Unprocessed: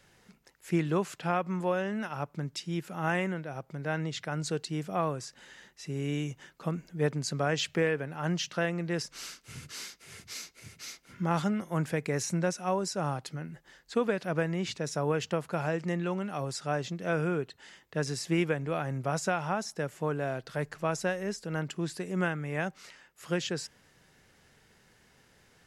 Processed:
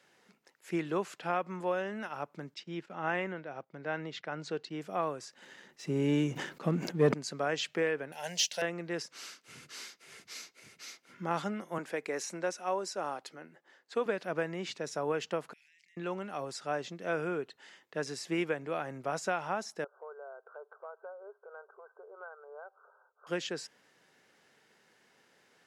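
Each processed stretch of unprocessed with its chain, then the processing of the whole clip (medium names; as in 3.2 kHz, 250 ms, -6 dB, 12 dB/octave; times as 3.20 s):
2.54–4.81 s: low-pass 4.5 kHz + gate -48 dBFS, range -12 dB
5.42–7.14 s: bass shelf 400 Hz +11 dB + waveshaping leveller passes 1 + decay stretcher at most 90 dB/s
8.12–8.62 s: tilt EQ +4 dB/octave + waveshaping leveller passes 1 + static phaser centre 330 Hz, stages 6
11.78–14.06 s: high-pass 270 Hz + tape noise reduction on one side only decoder only
15.53–15.97 s: elliptic high-pass 2 kHz + level held to a coarse grid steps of 21 dB
19.84–23.27 s: brick-wall FIR band-pass 390–1600 Hz + compression 2:1, threshold -49 dBFS
whole clip: high-pass 270 Hz 12 dB/octave; treble shelf 7.1 kHz -7 dB; trim -2 dB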